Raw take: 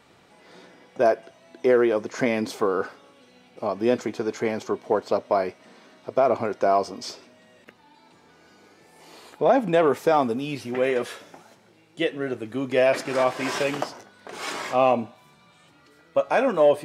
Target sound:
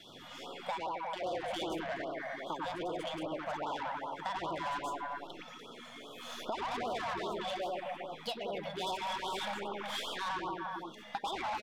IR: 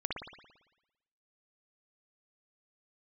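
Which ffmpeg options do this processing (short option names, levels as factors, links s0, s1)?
-filter_complex "[0:a]acrossover=split=330|940|4500[s0][s1][s2][s3];[s1]flanger=delay=1.4:depth=9.9:regen=-61:speed=0.18:shape=triangular[s4];[s3]aeval=exprs='max(val(0),0)':c=same[s5];[s0][s4][s2][s5]amix=inputs=4:normalize=0,asetrate=63945,aresample=44100,equalizer=f=3400:w=7:g=13[s6];[1:a]atrim=start_sample=2205,afade=t=out:st=0.42:d=0.01,atrim=end_sample=18963,asetrate=28224,aresample=44100[s7];[s6][s7]afir=irnorm=-1:irlink=0,asoftclip=type=tanh:threshold=0.112,acompressor=threshold=0.0178:ratio=10,afftfilt=real='re*(1-between(b*sr/1024,320*pow(2100/320,0.5+0.5*sin(2*PI*2.5*pts/sr))/1.41,320*pow(2100/320,0.5+0.5*sin(2*PI*2.5*pts/sr))*1.41))':imag='im*(1-between(b*sr/1024,320*pow(2100/320,0.5+0.5*sin(2*PI*2.5*pts/sr))/1.41,320*pow(2100/320,0.5+0.5*sin(2*PI*2.5*pts/sr))*1.41))':win_size=1024:overlap=0.75"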